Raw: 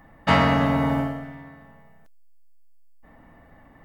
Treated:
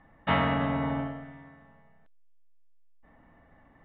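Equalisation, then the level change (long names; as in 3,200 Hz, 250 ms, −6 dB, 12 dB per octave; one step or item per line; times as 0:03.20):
elliptic low-pass filter 3,600 Hz, stop band 40 dB
−6.5 dB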